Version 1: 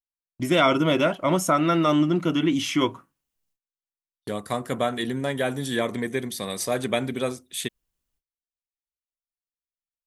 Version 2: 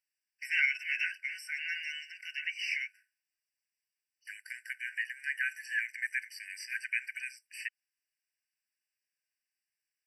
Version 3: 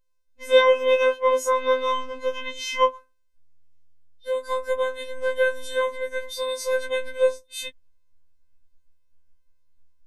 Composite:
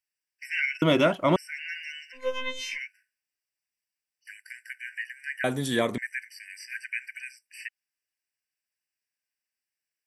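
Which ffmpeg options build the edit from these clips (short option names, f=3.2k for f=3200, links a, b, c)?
-filter_complex "[0:a]asplit=2[a][b];[1:a]asplit=4[c][d][e][f];[c]atrim=end=0.822[g];[a]atrim=start=0.818:end=1.362[h];[d]atrim=start=1.358:end=2.36[i];[2:a]atrim=start=2.12:end=2.79[j];[e]atrim=start=2.55:end=5.442[k];[b]atrim=start=5.438:end=5.982[l];[f]atrim=start=5.978[m];[g][h]acrossfade=d=0.004:c1=hsin:c2=hsin[n];[n][i]acrossfade=d=0.004:c1=hsin:c2=hsin[o];[o][j]acrossfade=d=0.24:c1=tri:c2=tri[p];[p][k]acrossfade=d=0.24:c1=tri:c2=tri[q];[q][l]acrossfade=d=0.004:c1=hsin:c2=hsin[r];[r][m]acrossfade=d=0.004:c1=hsin:c2=hsin"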